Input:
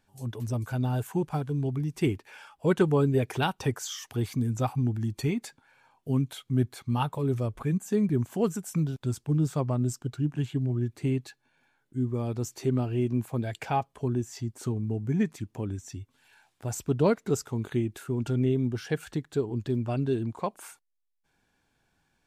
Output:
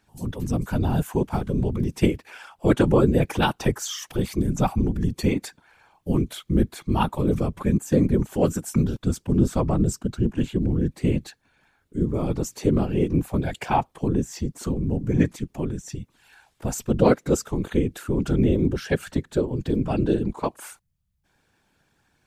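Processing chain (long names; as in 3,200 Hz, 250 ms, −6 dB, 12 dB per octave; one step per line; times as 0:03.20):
random phases in short frames
level +5.5 dB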